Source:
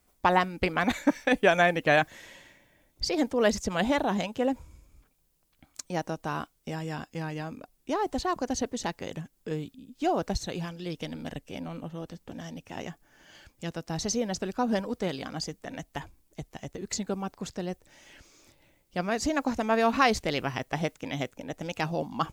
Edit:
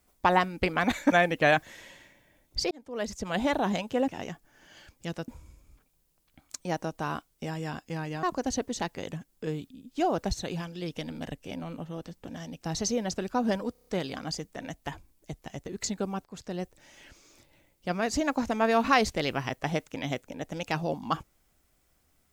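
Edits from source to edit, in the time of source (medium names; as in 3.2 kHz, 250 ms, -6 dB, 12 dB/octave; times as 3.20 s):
1.12–1.57 s: delete
3.16–4.03 s: fade in
7.48–8.27 s: delete
12.66–13.86 s: move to 4.53 s
14.96 s: stutter 0.03 s, 6 plays
17.34–17.69 s: fade in, from -12 dB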